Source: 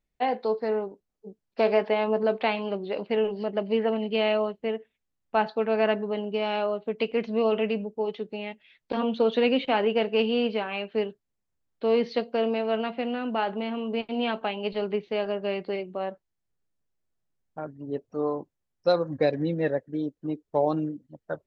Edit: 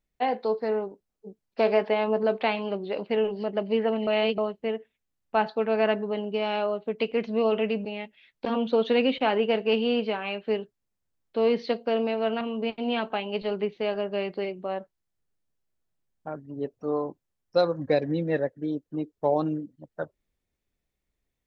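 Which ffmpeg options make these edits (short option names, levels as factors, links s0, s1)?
-filter_complex "[0:a]asplit=5[s0][s1][s2][s3][s4];[s0]atrim=end=4.072[s5];[s1]atrim=start=4.068:end=4.382,asetpts=PTS-STARTPTS,areverse[s6];[s2]atrim=start=4.378:end=7.852[s7];[s3]atrim=start=8.318:end=12.882[s8];[s4]atrim=start=13.718[s9];[s5][s6]acrossfade=d=0.004:c1=hsin:c2=hsin[s10];[s10][s7]acrossfade=d=0.004:c1=hsin:c2=hsin[s11];[s11][s8]acrossfade=d=0.004:c1=hsin:c2=hsin[s12];[s12][s9]acrossfade=d=0.004:c1=hsin:c2=hsin"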